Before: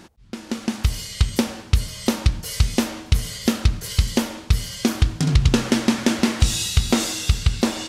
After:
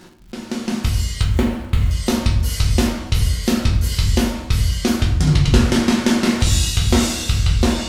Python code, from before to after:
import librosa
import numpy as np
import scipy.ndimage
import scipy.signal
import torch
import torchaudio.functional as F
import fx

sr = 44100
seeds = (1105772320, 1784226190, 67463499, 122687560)

y = fx.median_filter(x, sr, points=9, at=(1.21, 1.91))
y = fx.room_shoebox(y, sr, seeds[0], volume_m3=83.0, walls='mixed', distance_m=0.94)
y = fx.dmg_crackle(y, sr, seeds[1], per_s=160.0, level_db=-38.0)
y = y * 10.0 ** (-1.0 / 20.0)